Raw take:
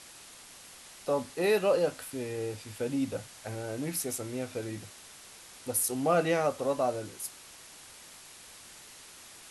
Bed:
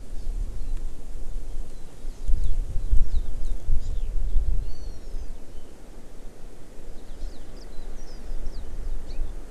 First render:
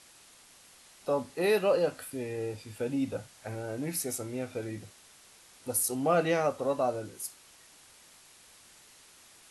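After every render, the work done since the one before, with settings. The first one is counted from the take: noise print and reduce 6 dB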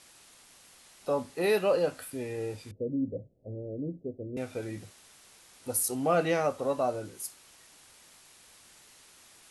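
2.71–4.37 steep low-pass 560 Hz 48 dB/oct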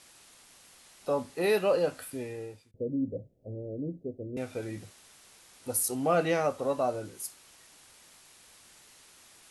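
2.15–2.74 fade out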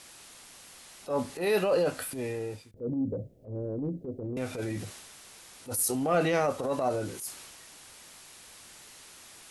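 in parallel at -0.5 dB: compressor, threshold -36 dBFS, peak gain reduction 14 dB; on the sum: transient shaper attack -11 dB, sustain +4 dB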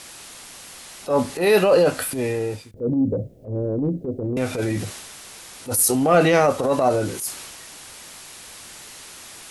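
gain +10 dB

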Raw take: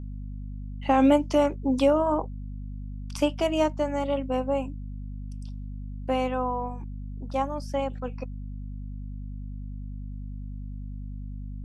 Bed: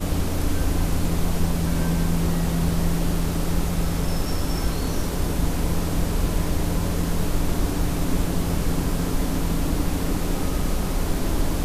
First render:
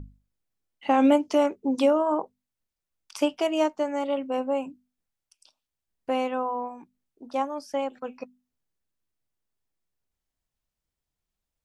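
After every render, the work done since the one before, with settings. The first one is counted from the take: notches 50/100/150/200/250 Hz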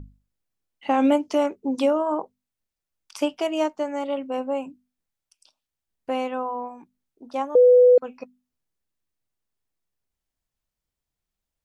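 7.55–7.98 bleep 496 Hz -10 dBFS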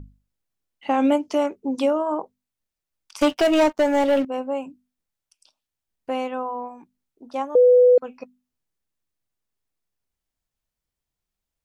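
3.21–4.25 sample leveller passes 3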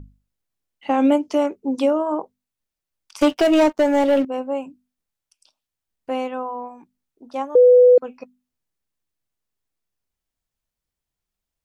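dynamic EQ 360 Hz, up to +4 dB, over -28 dBFS, Q 1.1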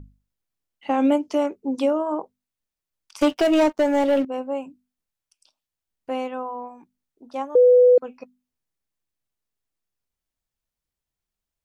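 gain -2.5 dB

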